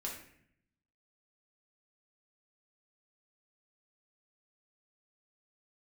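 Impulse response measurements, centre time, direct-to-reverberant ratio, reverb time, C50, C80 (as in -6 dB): 34 ms, -3.0 dB, 0.65 s, 5.0 dB, 8.5 dB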